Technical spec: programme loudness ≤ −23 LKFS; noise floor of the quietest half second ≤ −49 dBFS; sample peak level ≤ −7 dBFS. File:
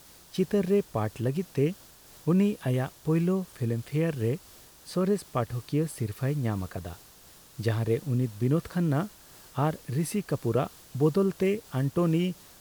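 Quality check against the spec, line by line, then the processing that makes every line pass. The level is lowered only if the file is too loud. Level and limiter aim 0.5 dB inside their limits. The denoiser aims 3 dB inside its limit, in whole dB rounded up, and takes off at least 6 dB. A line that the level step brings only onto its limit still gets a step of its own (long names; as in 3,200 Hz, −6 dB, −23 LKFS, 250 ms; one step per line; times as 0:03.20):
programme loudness −29.0 LKFS: in spec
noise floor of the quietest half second −53 dBFS: in spec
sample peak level −13.0 dBFS: in spec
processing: no processing needed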